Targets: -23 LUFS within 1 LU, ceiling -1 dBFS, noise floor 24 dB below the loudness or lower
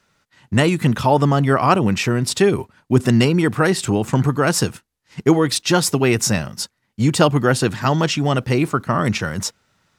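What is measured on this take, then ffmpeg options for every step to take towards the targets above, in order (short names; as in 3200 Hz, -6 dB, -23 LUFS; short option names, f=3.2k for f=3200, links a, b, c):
loudness -18.0 LUFS; peak -1.0 dBFS; loudness target -23.0 LUFS
-> -af "volume=-5dB"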